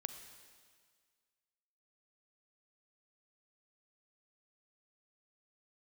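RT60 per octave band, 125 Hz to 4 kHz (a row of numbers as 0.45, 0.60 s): 1.7, 1.7, 1.8, 1.8, 1.8, 1.8 s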